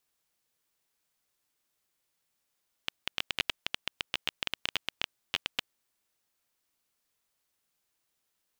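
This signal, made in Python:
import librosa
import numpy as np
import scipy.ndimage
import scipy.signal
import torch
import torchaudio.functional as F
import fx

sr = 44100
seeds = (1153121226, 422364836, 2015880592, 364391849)

y = fx.geiger_clicks(sr, seeds[0], length_s=2.94, per_s=12.0, level_db=-11.0)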